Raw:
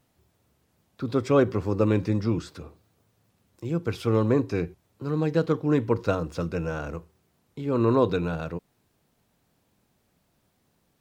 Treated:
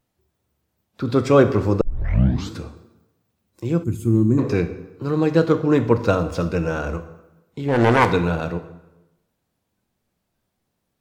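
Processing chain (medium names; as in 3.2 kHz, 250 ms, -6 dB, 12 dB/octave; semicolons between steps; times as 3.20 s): 7.68–8.09 s: self-modulated delay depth 0.87 ms; spectral noise reduction 13 dB; plate-style reverb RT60 0.98 s, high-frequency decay 0.8×, DRR 9 dB; 1.81 s: tape start 0.74 s; 3.84–4.38 s: time-frequency box 380–6300 Hz -20 dB; trim +6.5 dB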